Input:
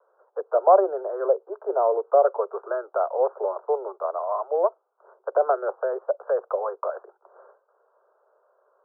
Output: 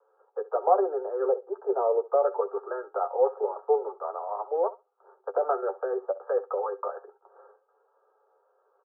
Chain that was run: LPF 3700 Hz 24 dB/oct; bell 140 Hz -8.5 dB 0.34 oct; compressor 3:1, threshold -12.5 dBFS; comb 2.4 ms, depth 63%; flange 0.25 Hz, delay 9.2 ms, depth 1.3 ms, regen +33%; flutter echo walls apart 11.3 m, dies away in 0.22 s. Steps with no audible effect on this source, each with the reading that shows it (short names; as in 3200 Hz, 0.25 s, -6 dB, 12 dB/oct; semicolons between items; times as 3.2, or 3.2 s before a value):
LPF 3700 Hz: input band ends at 1600 Hz; bell 140 Hz: input band starts at 320 Hz